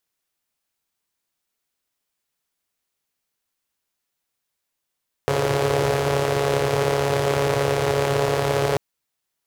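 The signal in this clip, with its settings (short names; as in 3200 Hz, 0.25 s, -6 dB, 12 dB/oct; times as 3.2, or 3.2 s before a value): four-cylinder engine model, steady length 3.49 s, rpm 4200, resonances 120/440 Hz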